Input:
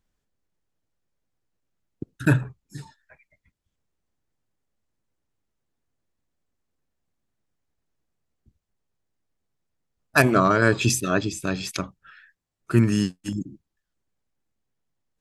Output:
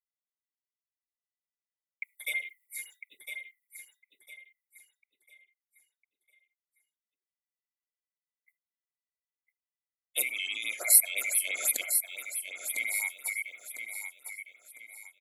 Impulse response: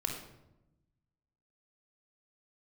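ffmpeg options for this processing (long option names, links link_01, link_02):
-filter_complex "[0:a]afftfilt=real='real(if(lt(b,920),b+92*(1-2*mod(floor(b/92),2)),b),0)':imag='imag(if(lt(b,920),b+92*(1-2*mod(floor(b/92),2)),b),0)':win_size=2048:overlap=0.75,agate=range=-33dB:threshold=-50dB:ratio=3:detection=peak,areverse,acompressor=threshold=-25dB:ratio=8,areverse,aexciter=amount=13.1:drive=5.5:freq=8500,highpass=320,asplit=2[link_01][link_02];[link_02]aecho=0:1:1003|2006|3009|4012:0.398|0.139|0.0488|0.0171[link_03];[link_01][link_03]amix=inputs=2:normalize=0,afftfilt=real='re*(1-between(b*sr/1024,870*pow(6100/870,0.5+0.5*sin(2*PI*5.9*pts/sr))/1.41,870*pow(6100/870,0.5+0.5*sin(2*PI*5.9*pts/sr))*1.41))':imag='im*(1-between(b*sr/1024,870*pow(6100/870,0.5+0.5*sin(2*PI*5.9*pts/sr))/1.41,870*pow(6100/870,0.5+0.5*sin(2*PI*5.9*pts/sr))*1.41))':win_size=1024:overlap=0.75,volume=-4.5dB"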